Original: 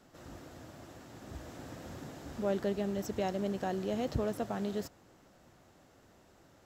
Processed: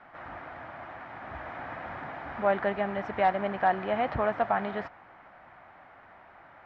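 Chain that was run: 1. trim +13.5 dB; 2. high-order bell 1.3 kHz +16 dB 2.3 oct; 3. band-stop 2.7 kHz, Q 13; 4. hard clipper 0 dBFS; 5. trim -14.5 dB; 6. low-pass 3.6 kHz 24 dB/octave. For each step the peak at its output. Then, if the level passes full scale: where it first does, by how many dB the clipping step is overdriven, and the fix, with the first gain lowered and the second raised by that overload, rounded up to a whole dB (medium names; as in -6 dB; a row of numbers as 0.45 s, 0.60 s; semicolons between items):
-5.5 dBFS, +3.5 dBFS, +3.5 dBFS, 0.0 dBFS, -14.5 dBFS, -14.0 dBFS; step 2, 3.5 dB; step 1 +9.5 dB, step 5 -10.5 dB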